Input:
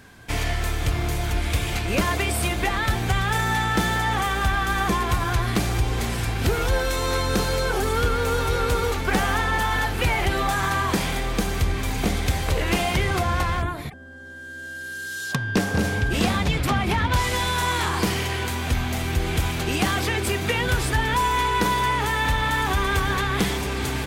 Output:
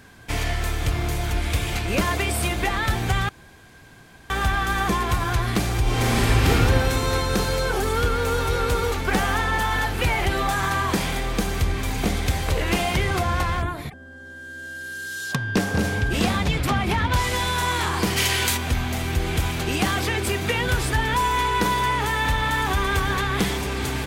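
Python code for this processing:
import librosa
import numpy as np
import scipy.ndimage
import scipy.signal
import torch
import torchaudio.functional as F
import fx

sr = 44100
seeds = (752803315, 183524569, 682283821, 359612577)

y = fx.reverb_throw(x, sr, start_s=5.82, length_s=0.66, rt60_s=2.9, drr_db=-7.0)
y = fx.high_shelf(y, sr, hz=2000.0, db=12.0, at=(18.16, 18.56), fade=0.02)
y = fx.edit(y, sr, fx.room_tone_fill(start_s=3.29, length_s=1.01), tone=tone)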